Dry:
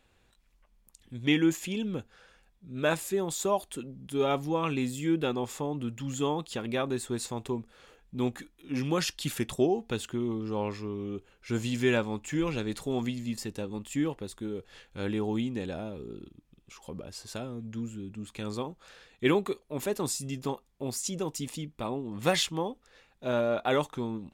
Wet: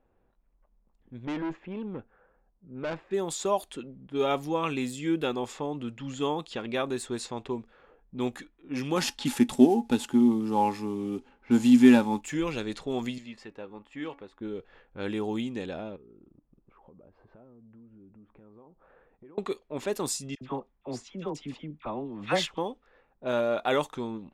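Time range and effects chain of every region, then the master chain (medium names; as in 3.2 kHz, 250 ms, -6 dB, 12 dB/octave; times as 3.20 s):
1.25–3.11 s: low-pass 1.6 kHz + valve stage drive 29 dB, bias 0.4
8.96–12.21 s: CVSD coder 64 kbps + small resonant body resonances 250/840 Hz, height 18 dB, ringing for 95 ms
13.18–14.41 s: bass shelf 430 Hz -11.5 dB + de-hum 281.5 Hz, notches 9
15.96–19.38 s: low-pass 2.2 kHz + compression 8:1, threshold -49 dBFS
20.35–22.58 s: low-pass 2.8 kHz 6 dB/octave + peaking EQ 450 Hz -3.5 dB 0.38 oct + phase dispersion lows, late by 64 ms, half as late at 1.2 kHz
whole clip: level-controlled noise filter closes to 820 Hz, open at -26.5 dBFS; peaking EQ 89 Hz -7.5 dB 2.2 oct; trim +1.5 dB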